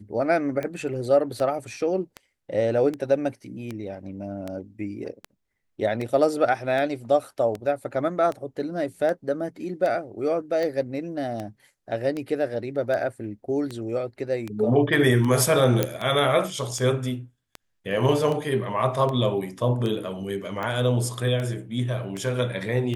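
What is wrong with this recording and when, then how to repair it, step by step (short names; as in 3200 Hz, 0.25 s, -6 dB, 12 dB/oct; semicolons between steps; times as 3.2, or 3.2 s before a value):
tick 78 rpm -18 dBFS
15.83 pop -7 dBFS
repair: de-click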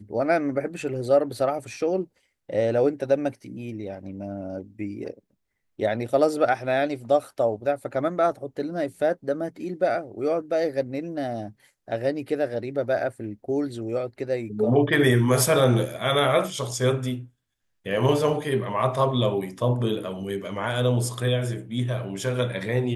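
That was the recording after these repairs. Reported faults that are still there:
none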